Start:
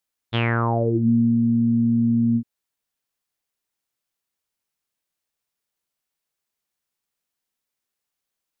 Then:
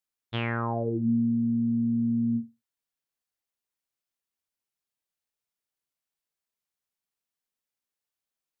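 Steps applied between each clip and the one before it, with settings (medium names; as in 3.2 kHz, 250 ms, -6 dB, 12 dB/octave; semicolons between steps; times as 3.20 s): flutter echo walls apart 8.2 m, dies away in 0.23 s; trim -7.5 dB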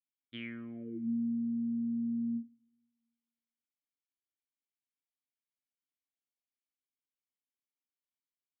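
vowel filter i; on a send at -23 dB: reverberation RT60 1.4 s, pre-delay 57 ms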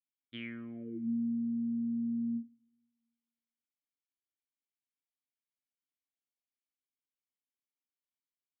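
no audible change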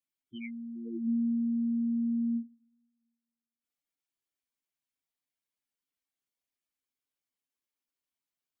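spectral gate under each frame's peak -10 dB strong; trim +4 dB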